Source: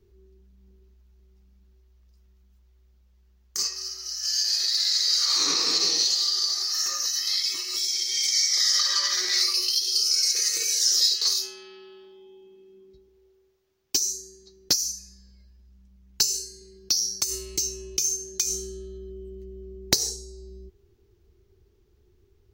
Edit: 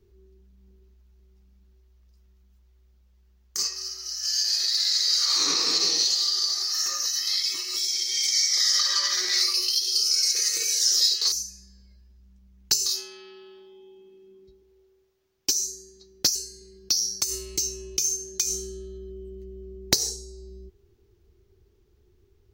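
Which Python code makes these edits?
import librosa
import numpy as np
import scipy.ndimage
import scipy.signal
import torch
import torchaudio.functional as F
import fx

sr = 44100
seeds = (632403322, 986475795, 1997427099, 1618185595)

y = fx.edit(x, sr, fx.move(start_s=14.81, length_s=1.54, to_s=11.32), tone=tone)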